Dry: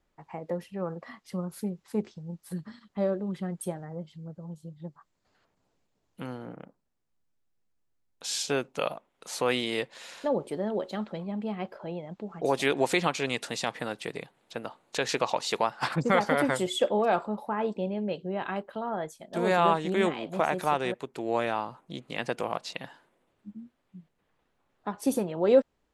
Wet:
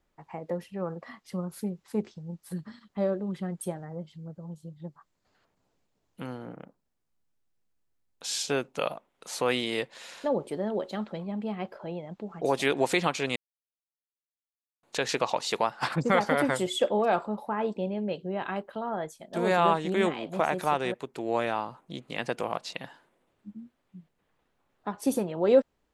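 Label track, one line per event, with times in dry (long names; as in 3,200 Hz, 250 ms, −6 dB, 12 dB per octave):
13.360000	14.830000	silence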